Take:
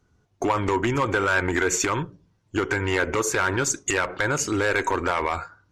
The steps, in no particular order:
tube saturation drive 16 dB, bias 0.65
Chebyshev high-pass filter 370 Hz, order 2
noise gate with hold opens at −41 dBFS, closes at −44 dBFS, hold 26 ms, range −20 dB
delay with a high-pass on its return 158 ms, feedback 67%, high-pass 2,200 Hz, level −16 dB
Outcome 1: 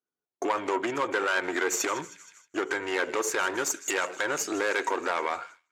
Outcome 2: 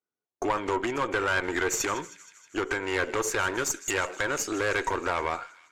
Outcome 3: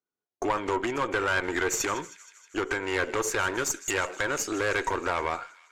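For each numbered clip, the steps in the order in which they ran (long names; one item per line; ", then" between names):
delay with a high-pass on its return, then tube saturation, then noise gate with hold, then Chebyshev high-pass filter
delay with a high-pass on its return, then noise gate with hold, then Chebyshev high-pass filter, then tube saturation
Chebyshev high-pass filter, then noise gate with hold, then delay with a high-pass on its return, then tube saturation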